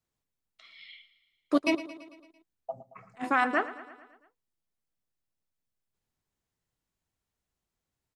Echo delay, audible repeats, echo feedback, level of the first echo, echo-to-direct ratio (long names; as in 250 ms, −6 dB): 112 ms, 5, 59%, −15.5 dB, −13.5 dB